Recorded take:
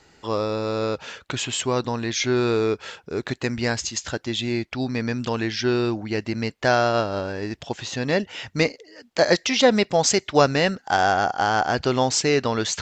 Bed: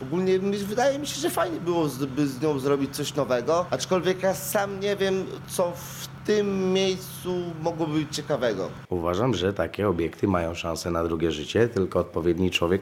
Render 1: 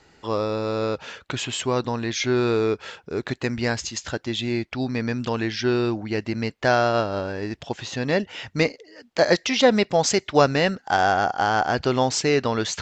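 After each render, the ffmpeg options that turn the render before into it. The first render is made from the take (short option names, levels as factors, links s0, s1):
-af "highshelf=f=6900:g=-7"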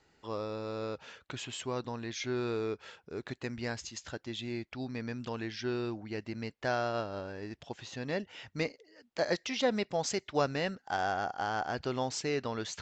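-af "volume=0.237"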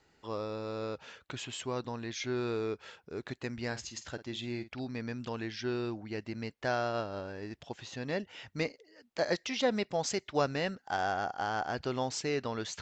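-filter_complex "[0:a]asettb=1/sr,asplit=3[s0][s1][s2];[s0]atrim=end=3.674[s3];[s1]atrim=start=3.67:end=4.87,asetpts=PTS-STARTPTS,afade=t=in:d=0.004:c=qsin,afade=t=out:st=1.196:d=0.004:c=qsin,asplit=2[s4][s5];[s5]adelay=49,volume=0.224[s6];[s4][s6]amix=inputs=2:normalize=0,atrim=end_sample=52920[s7];[s2]atrim=start=4.866[s8];[s3][s7]acrossfade=d=0.004:c1=hsin:c2=qsin[s9];[s9][s8]acrossfade=d=0.004:c1=qsin:c2=hsin"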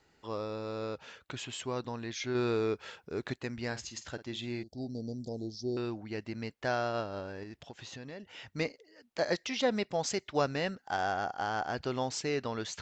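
-filter_complex "[0:a]asettb=1/sr,asplit=3[s0][s1][s2];[s0]atrim=end=4.634[s3];[s1]atrim=start=4.63:end=5.77,asetpts=PTS-STARTPTS,afade=t=in:d=0.004:c=qsin,afade=t=out:st=1.136:d=0.004:c=qsin,asuperstop=centerf=1800:order=12:qfactor=0.5[s4];[s2]atrim=start=5.766[s5];[s3][s4]acrossfade=d=0.004:c1=hsin:c2=qsin[s6];[s6][s5]acrossfade=d=0.004:c1=qsin:c2=hsin,asettb=1/sr,asplit=3[s7][s8][s9];[s7]atrim=end=7.434[s10];[s8]atrim=start=7.43:end=8.42,asetpts=PTS-STARTPTS,afade=t=in:d=0.004:c=qsin,afade=t=out:st=0.986:d=0.004:c=qsin,acompressor=threshold=0.00891:ratio=6:attack=3.2:release=140:knee=1:detection=peak[s11];[s9]atrim=start=8.416[s12];[s10][s11]acrossfade=d=0.004:c1=hsin:c2=qsin[s13];[s13][s12]acrossfade=d=0.004:c1=qsin:c2=hsin,asplit=3[s14][s15][s16];[s14]atrim=end=2.352[s17];[s15]atrim=start=2.348:end=3.362,asetpts=PTS-STARTPTS,volume=1.5[s18];[s16]atrim=start=3.358[s19];[s17][s18]acrossfade=d=0.004:c1=hsin:c2=hsin[s20];[s20][s19]acrossfade=d=0.004:c1=hsin:c2=hsin"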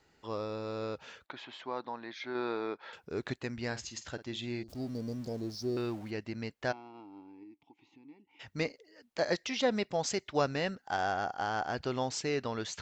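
-filter_complex "[0:a]asettb=1/sr,asplit=3[s0][s1][s2];[s0]atrim=end=1.264[s3];[s1]atrim=start=1.26:end=2.93,asetpts=PTS-STARTPTS,afade=t=in:d=0.004:c=qsin,afade=t=out:st=1.666:d=0.004:c=qsin,highpass=330,equalizer=f=430:t=q:w=4:g=-6,equalizer=f=880:t=q:w=4:g=5,equalizer=f=2800:t=q:w=4:g=-10,lowpass=f=3900:w=0.5412,lowpass=f=3900:w=1.3066[s4];[s2]atrim=start=2.926[s5];[s3][s4]acrossfade=d=0.004:c1=hsin:c2=qsin[s6];[s6][s5]acrossfade=d=0.004:c1=qsin:c2=hsin,asettb=1/sr,asplit=3[s7][s8][s9];[s7]atrim=end=4.684[s10];[s8]atrim=start=4.68:end=6.11,asetpts=PTS-STARTPTS,afade=t=in:d=0.004:c=qsin,afade=t=out:st=1.426:d=0.004:c=qsin,aeval=exprs='val(0)+0.5*0.00376*sgn(val(0))':c=same[s11];[s9]atrim=start=6.106[s12];[s10][s11]acrossfade=d=0.004:c1=hsin:c2=qsin[s13];[s13][s12]acrossfade=d=0.004:c1=qsin:c2=hsin,asplit=3[s14][s15][s16];[s14]afade=t=out:st=6.71:d=0.02[s17];[s15]asplit=3[s18][s19][s20];[s18]bandpass=f=300:t=q:w=8,volume=1[s21];[s19]bandpass=f=870:t=q:w=8,volume=0.501[s22];[s20]bandpass=f=2240:t=q:w=8,volume=0.355[s23];[s21][s22][s23]amix=inputs=3:normalize=0,afade=t=in:st=6.71:d=0.02,afade=t=out:st=8.39:d=0.02[s24];[s16]afade=t=in:st=8.39:d=0.02[s25];[s17][s24][s25]amix=inputs=3:normalize=0"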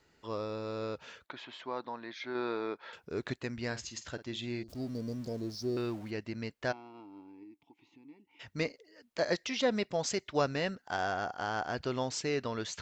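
-af "bandreject=f=800:w=12"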